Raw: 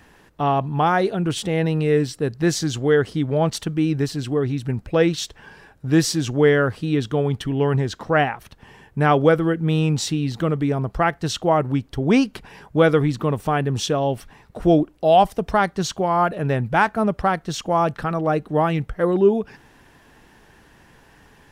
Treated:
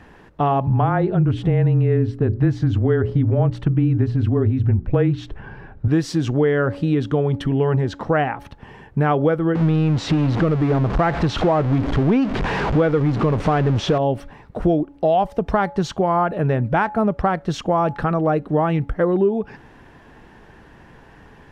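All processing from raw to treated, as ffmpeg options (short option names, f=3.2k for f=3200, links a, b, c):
-filter_complex "[0:a]asettb=1/sr,asplit=3[a][b][c];[a]atrim=end=0.674[d];[b]atrim=start=0.67:end=5.88,asetpts=PTS-STARTPTS,afade=t=in:d=0.004:c=qsin,afade=t=out:st=5.206:d=0.004:c=qsin,bass=f=250:g=10,treble=f=4k:g=-14,afreqshift=-21,bandreject=f=60:t=h:w=6,bandreject=f=120:t=h:w=6,bandreject=f=180:t=h:w=6,bandreject=f=240:t=h:w=6,bandreject=f=300:t=h:w=6,bandreject=f=360:t=h:w=6,bandreject=f=420:t=h:w=6[e];[c]atrim=start=5.876[f];[d][e]acrossfade=d=0.004:c1=hsin:c2=qsin[g];[g][f]acrossfade=d=0.004:c1=qsin:c2=hsin,asettb=1/sr,asplit=3[h][i][j];[h]atrim=end=9.554[k];[i]atrim=start=9.55:end=13.98,asetpts=PTS-STARTPTS,afade=t=in:d=0.004:c=qsin,afade=t=out:st=4.426:d=0.004:c=qsin,aeval=exprs='val(0)+0.5*0.0944*sgn(val(0))':c=same,lowpass=6.4k,highshelf=f=4.6k:g=-6.5[l];[j]atrim=start=13.976[m];[k][l]acrossfade=d=0.004:c1=hsin:c2=qsin[n];[n][m]acrossfade=d=0.004:c1=qsin:c2=hsin,lowpass=f=1.6k:p=1,bandreject=f=282.3:t=h:w=4,bandreject=f=564.6:t=h:w=4,bandreject=f=846.9:t=h:w=4,acompressor=threshold=-22dB:ratio=4,volume=6.5dB"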